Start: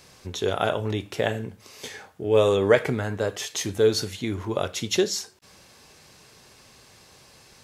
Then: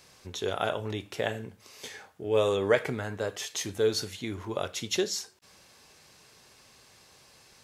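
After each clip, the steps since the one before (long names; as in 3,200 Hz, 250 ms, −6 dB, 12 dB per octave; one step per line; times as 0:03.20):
low-shelf EQ 450 Hz −4 dB
level −4 dB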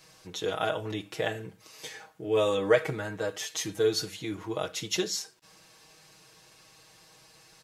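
comb filter 6.3 ms, depth 98%
level −2.5 dB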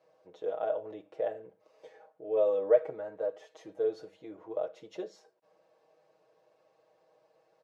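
resonant band-pass 570 Hz, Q 4.1
level +3 dB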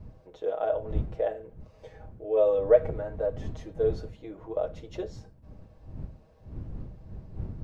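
wind on the microphone 110 Hz −43 dBFS
level +4 dB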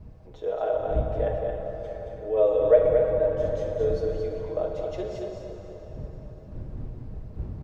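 on a send: single-tap delay 223 ms −5 dB
on the sum: dense smooth reverb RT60 4.4 s, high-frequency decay 0.7×, DRR 1.5 dB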